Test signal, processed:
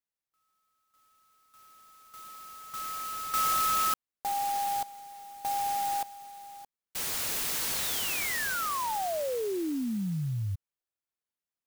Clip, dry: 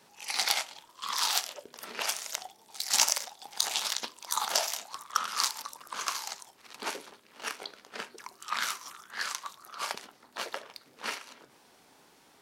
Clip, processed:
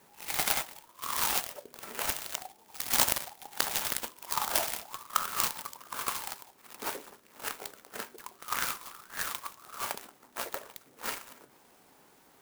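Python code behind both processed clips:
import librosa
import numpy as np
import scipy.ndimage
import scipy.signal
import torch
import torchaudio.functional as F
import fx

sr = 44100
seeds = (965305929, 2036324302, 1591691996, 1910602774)

y = fx.clock_jitter(x, sr, seeds[0], jitter_ms=0.071)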